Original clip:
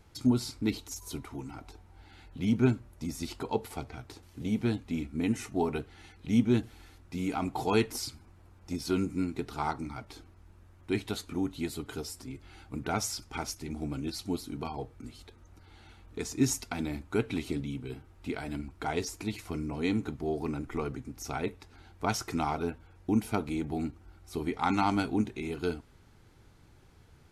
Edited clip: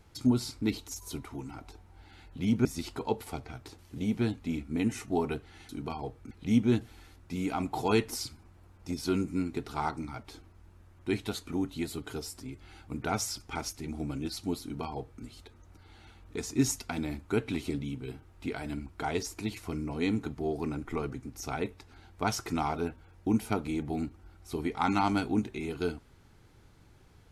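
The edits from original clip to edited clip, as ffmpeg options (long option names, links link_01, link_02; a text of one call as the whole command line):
ffmpeg -i in.wav -filter_complex "[0:a]asplit=4[link_01][link_02][link_03][link_04];[link_01]atrim=end=2.652[link_05];[link_02]atrim=start=3.088:end=6.132[link_06];[link_03]atrim=start=14.438:end=15.062[link_07];[link_04]atrim=start=6.128[link_08];[link_05][link_06]acrossfade=duration=0.004:curve1=hsin:curve2=hsin[link_09];[link_09][link_07]acrossfade=duration=0.004:curve1=hsin:curve2=hsin[link_10];[link_10][link_08]acrossfade=duration=0.004:curve1=hsin:curve2=hsin" out.wav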